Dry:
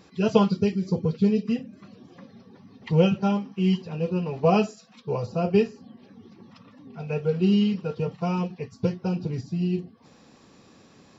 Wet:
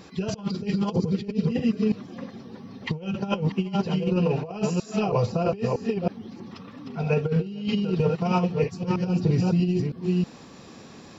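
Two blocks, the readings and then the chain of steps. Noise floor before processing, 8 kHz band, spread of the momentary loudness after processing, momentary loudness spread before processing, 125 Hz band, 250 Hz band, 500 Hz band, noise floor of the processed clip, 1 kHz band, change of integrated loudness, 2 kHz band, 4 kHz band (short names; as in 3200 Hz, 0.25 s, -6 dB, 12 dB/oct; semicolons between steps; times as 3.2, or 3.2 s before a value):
-55 dBFS, n/a, 17 LU, 10 LU, +2.0 dB, -0.5 dB, -1.0 dB, -46 dBFS, -0.5 dB, -0.5 dB, +1.5 dB, +0.5 dB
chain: reverse delay 0.32 s, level -5 dB; negative-ratio compressor -26 dBFS, ratio -0.5; gain +3 dB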